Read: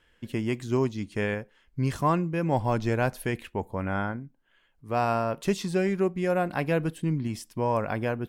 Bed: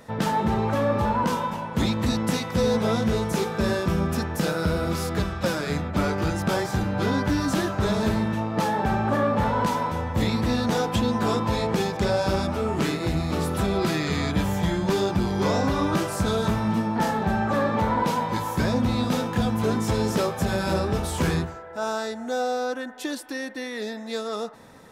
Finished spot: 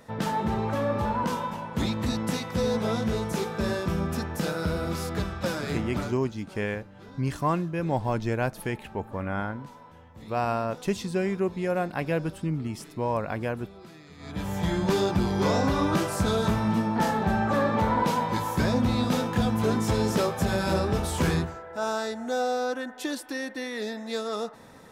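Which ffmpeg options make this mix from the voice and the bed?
ffmpeg -i stem1.wav -i stem2.wav -filter_complex "[0:a]adelay=5400,volume=-1.5dB[link_01];[1:a]volume=18.5dB,afade=type=out:start_time=5.89:duration=0.29:silence=0.105925,afade=type=in:start_time=14.18:duration=0.61:silence=0.0749894[link_02];[link_01][link_02]amix=inputs=2:normalize=0" out.wav

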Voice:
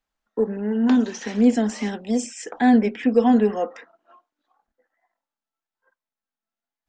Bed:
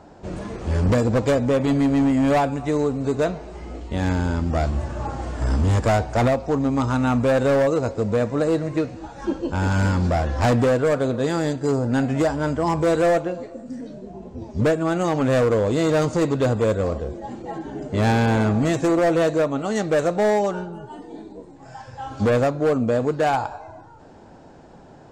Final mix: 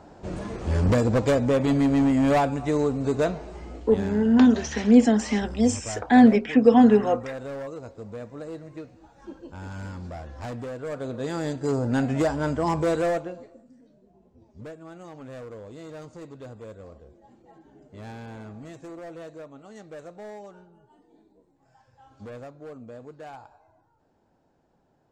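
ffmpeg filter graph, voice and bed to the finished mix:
ffmpeg -i stem1.wav -i stem2.wav -filter_complex "[0:a]adelay=3500,volume=1.5dB[link_01];[1:a]volume=11.5dB,afade=type=out:start_time=3.42:duration=0.82:silence=0.188365,afade=type=in:start_time=10.75:duration=1.12:silence=0.211349,afade=type=out:start_time=12.71:duration=1.02:silence=0.11885[link_02];[link_01][link_02]amix=inputs=2:normalize=0" out.wav

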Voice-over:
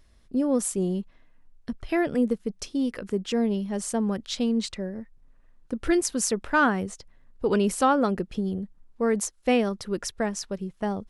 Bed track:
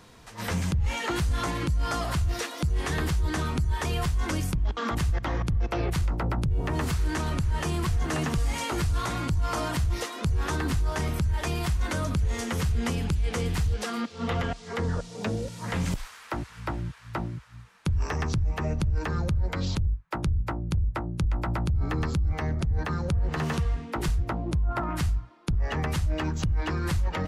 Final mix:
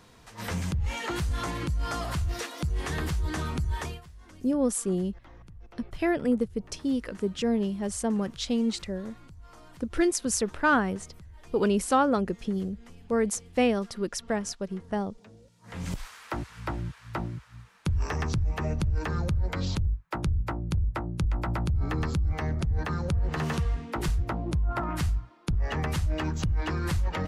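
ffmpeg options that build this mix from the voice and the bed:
ffmpeg -i stem1.wav -i stem2.wav -filter_complex "[0:a]adelay=4100,volume=-1.5dB[link_01];[1:a]volume=19dB,afade=type=out:start_time=3.79:duration=0.22:silence=0.1,afade=type=in:start_time=15.63:duration=0.43:silence=0.0794328[link_02];[link_01][link_02]amix=inputs=2:normalize=0" out.wav

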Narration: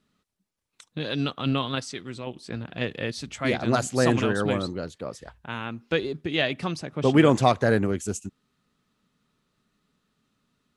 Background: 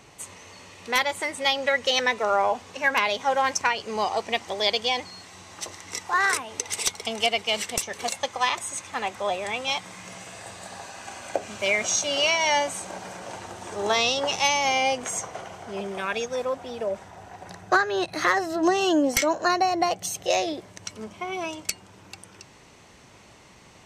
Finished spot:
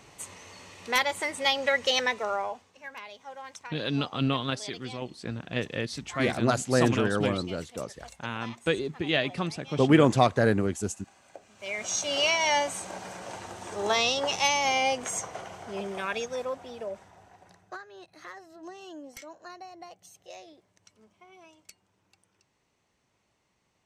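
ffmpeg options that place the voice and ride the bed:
ffmpeg -i stem1.wav -i stem2.wav -filter_complex "[0:a]adelay=2750,volume=-1.5dB[link_01];[1:a]volume=15.5dB,afade=type=out:start_time=1.9:duration=0.81:silence=0.125893,afade=type=in:start_time=11.55:duration=0.61:silence=0.133352,afade=type=out:start_time=15.92:duration=1.87:silence=0.1[link_02];[link_01][link_02]amix=inputs=2:normalize=0" out.wav

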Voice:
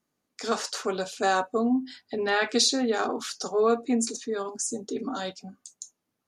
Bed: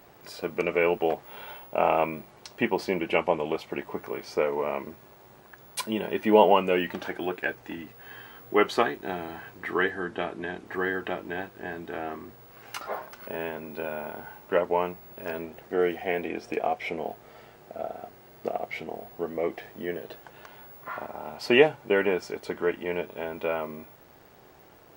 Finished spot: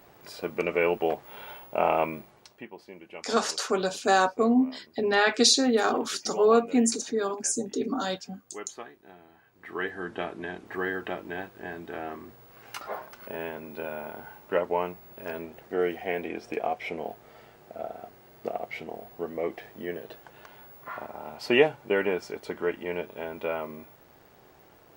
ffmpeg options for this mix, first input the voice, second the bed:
ffmpeg -i stem1.wav -i stem2.wav -filter_complex "[0:a]adelay=2850,volume=2.5dB[link_01];[1:a]volume=15.5dB,afade=type=out:start_time=2.14:duration=0.51:silence=0.133352,afade=type=in:start_time=9.5:duration=0.61:silence=0.149624[link_02];[link_01][link_02]amix=inputs=2:normalize=0" out.wav

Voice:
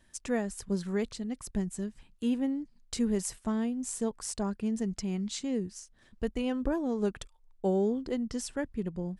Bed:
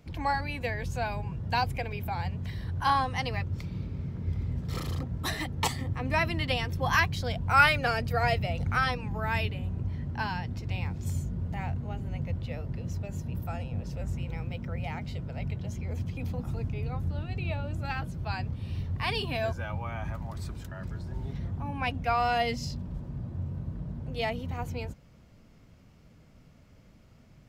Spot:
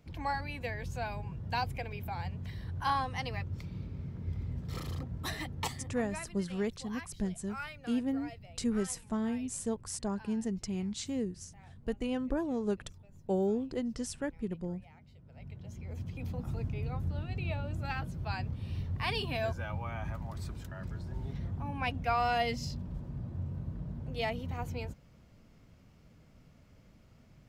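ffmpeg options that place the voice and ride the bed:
ffmpeg -i stem1.wav -i stem2.wav -filter_complex "[0:a]adelay=5650,volume=-2.5dB[link_01];[1:a]volume=13dB,afade=type=out:start_time=5.46:duration=0.87:silence=0.158489,afade=type=in:start_time=15.2:duration=1.34:silence=0.11885[link_02];[link_01][link_02]amix=inputs=2:normalize=0" out.wav

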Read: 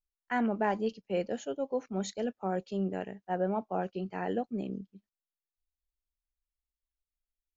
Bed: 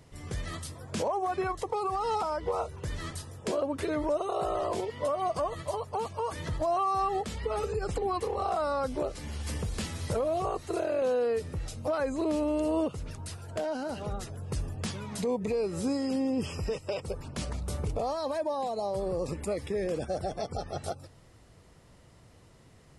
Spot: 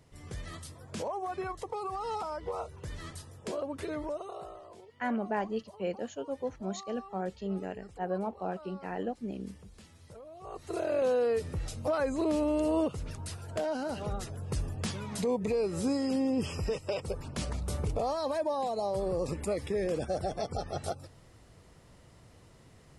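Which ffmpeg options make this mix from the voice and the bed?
ffmpeg -i stem1.wav -i stem2.wav -filter_complex "[0:a]adelay=4700,volume=-2.5dB[link_01];[1:a]volume=14.5dB,afade=type=out:start_time=3.93:duration=0.69:silence=0.188365,afade=type=in:start_time=10.4:duration=0.55:silence=0.1[link_02];[link_01][link_02]amix=inputs=2:normalize=0" out.wav

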